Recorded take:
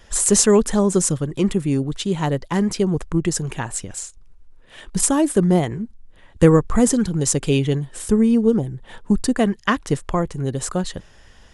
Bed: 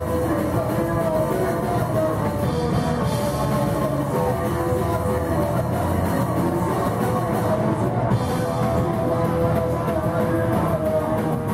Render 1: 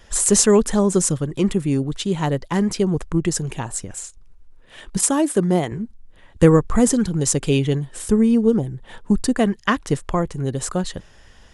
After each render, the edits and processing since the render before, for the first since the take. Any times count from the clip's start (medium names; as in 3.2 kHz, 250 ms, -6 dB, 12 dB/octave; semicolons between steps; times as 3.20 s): 3.41–4.03 s: peaking EQ 950 Hz -> 5.4 kHz -6.5 dB; 4.97–5.72 s: high-pass 180 Hz 6 dB/octave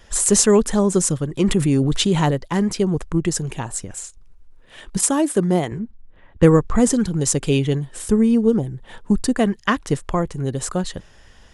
1.40–2.31 s: level flattener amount 70%; 5.79–6.90 s: level-controlled noise filter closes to 2.2 kHz, open at -8.5 dBFS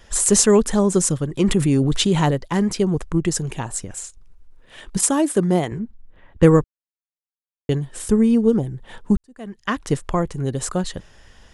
6.64–7.69 s: mute; 9.17–9.86 s: fade in quadratic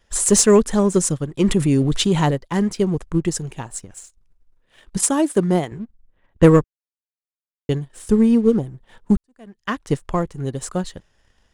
waveshaping leveller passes 1; upward expansion 1.5:1, over -30 dBFS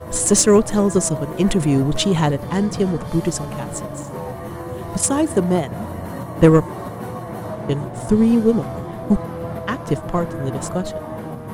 add bed -8 dB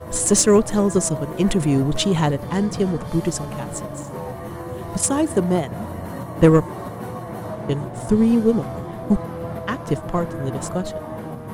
trim -1.5 dB